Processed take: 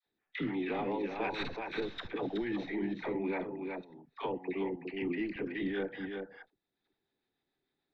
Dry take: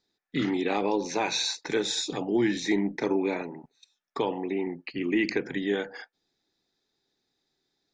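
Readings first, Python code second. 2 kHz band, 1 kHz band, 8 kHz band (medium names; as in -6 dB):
-7.0 dB, -6.5 dB, under -30 dB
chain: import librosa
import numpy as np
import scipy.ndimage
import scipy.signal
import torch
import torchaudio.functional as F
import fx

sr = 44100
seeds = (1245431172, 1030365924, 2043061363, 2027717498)

p1 = fx.tracing_dist(x, sr, depth_ms=0.11)
p2 = scipy.signal.sosfilt(scipy.signal.butter(4, 3200.0, 'lowpass', fs=sr, output='sos'), p1)
p3 = fx.level_steps(p2, sr, step_db=16)
p4 = fx.dispersion(p3, sr, late='lows', ms=64.0, hz=660.0)
p5 = fx.harmonic_tremolo(p4, sr, hz=6.7, depth_pct=50, crossover_hz=580.0)
p6 = p5 + fx.echo_single(p5, sr, ms=373, db=-7.0, dry=0)
y = fx.band_squash(p6, sr, depth_pct=40)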